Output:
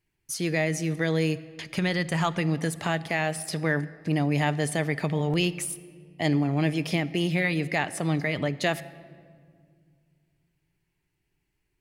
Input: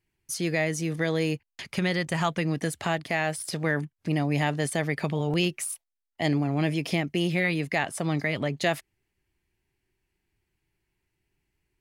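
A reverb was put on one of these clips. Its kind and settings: shoebox room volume 3600 m³, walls mixed, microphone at 0.42 m

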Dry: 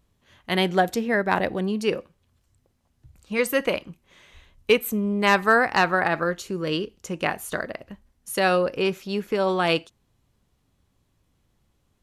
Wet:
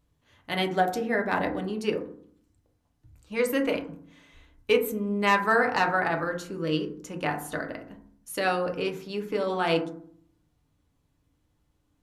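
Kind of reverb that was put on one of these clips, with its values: FDN reverb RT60 0.57 s, low-frequency decay 1.5×, high-frequency decay 0.3×, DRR 2.5 dB; gain -6 dB

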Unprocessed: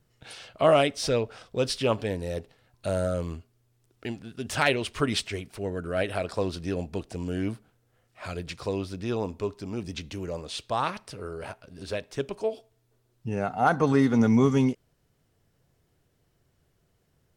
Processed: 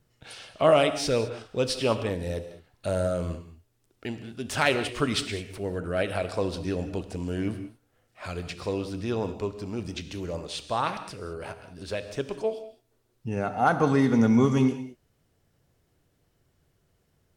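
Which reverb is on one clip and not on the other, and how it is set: non-linear reverb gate 0.23 s flat, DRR 9.5 dB

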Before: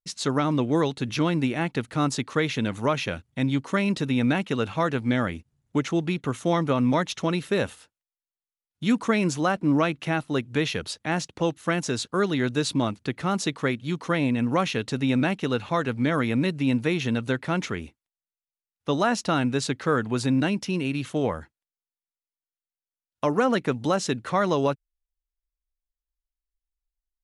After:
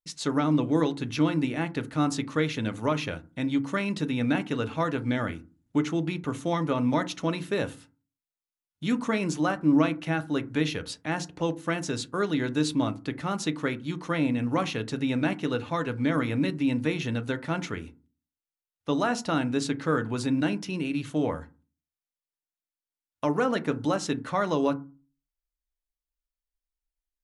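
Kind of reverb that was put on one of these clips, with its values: FDN reverb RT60 0.32 s, low-frequency decay 1.55×, high-frequency decay 0.4×, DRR 9 dB; gain -4 dB

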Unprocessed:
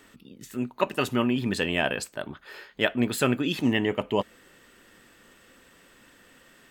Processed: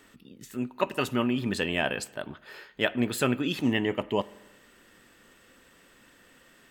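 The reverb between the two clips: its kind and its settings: spring tank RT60 1.1 s, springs 44 ms, chirp 70 ms, DRR 19 dB; gain -2 dB

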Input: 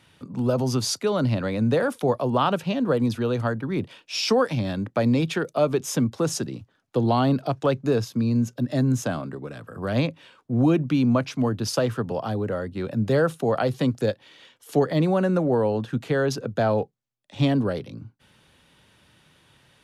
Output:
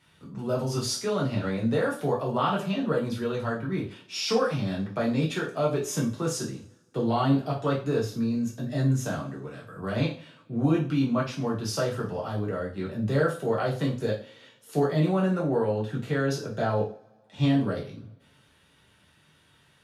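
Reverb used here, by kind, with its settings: two-slope reverb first 0.36 s, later 1.7 s, from -28 dB, DRR -5 dB; gain -9 dB

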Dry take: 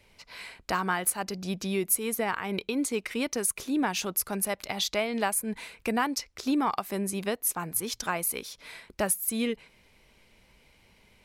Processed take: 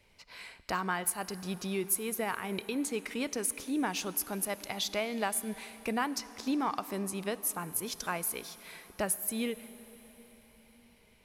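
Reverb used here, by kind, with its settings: plate-style reverb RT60 4.8 s, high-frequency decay 0.9×, DRR 15 dB; gain -4.5 dB

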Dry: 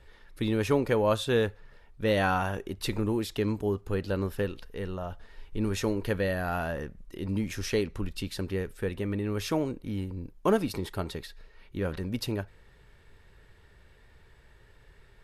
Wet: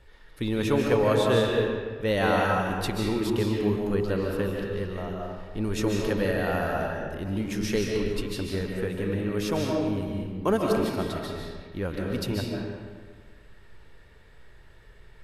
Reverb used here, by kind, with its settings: digital reverb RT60 1.6 s, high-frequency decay 0.7×, pre-delay 0.105 s, DRR -1 dB

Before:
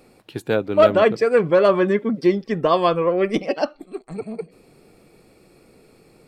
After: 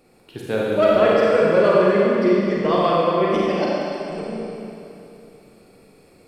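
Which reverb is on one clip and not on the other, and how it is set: Schroeder reverb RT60 2.9 s, combs from 32 ms, DRR -5.5 dB; gain -5.5 dB

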